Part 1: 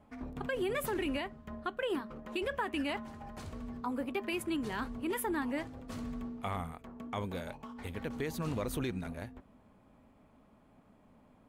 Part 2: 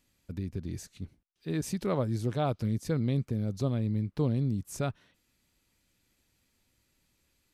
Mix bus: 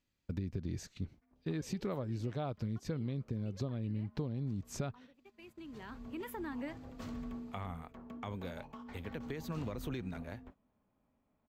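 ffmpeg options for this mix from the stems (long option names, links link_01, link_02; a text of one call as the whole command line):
ffmpeg -i stem1.wav -i stem2.wav -filter_complex "[0:a]acrossover=split=220[link_01][link_02];[link_02]acompressor=threshold=-37dB:ratio=10[link_03];[link_01][link_03]amix=inputs=2:normalize=0,adelay=1100,volume=-2.5dB[link_04];[1:a]highshelf=frequency=10000:gain=-9.5,acompressor=threshold=-36dB:ratio=12,volume=2.5dB,asplit=2[link_05][link_06];[link_06]apad=whole_len=554887[link_07];[link_04][link_07]sidechaincompress=threshold=-55dB:ratio=5:attack=42:release=993[link_08];[link_08][link_05]amix=inputs=2:normalize=0,agate=range=-13dB:threshold=-54dB:ratio=16:detection=peak,equalizer=frequency=9800:width_type=o:width=0.39:gain=-14" out.wav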